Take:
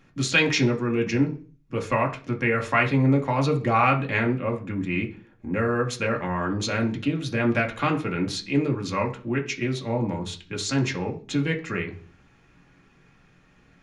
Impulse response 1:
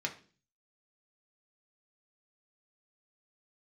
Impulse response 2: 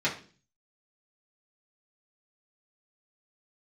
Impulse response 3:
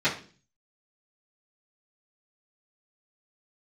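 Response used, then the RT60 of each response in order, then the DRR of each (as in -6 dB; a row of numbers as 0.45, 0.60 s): 1; 0.40, 0.40, 0.40 s; 0.0, -8.5, -15.0 dB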